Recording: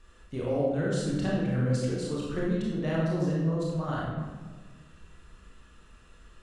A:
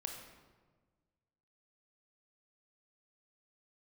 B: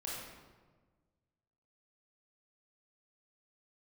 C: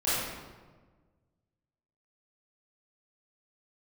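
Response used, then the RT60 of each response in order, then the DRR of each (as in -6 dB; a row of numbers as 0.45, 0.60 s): B; 1.4, 1.4, 1.4 s; 2.5, -6.0, -12.5 dB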